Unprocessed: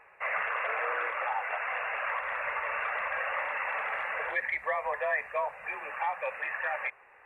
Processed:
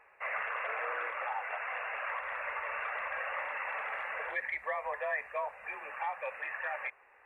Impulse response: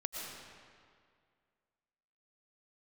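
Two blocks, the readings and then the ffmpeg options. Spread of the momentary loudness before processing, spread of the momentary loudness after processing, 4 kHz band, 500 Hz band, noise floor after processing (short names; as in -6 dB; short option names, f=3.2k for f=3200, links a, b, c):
3 LU, 3 LU, -4.5 dB, -4.5 dB, -62 dBFS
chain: -af "equalizer=f=140:t=o:w=0.39:g=-12,volume=-4.5dB"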